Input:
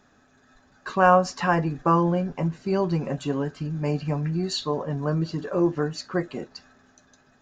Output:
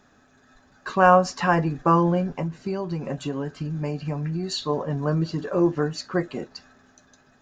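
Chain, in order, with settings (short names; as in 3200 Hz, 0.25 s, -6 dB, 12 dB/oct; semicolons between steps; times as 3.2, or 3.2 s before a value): 2.36–4.69 compressor, threshold -26 dBFS, peak gain reduction 8 dB; gain +1.5 dB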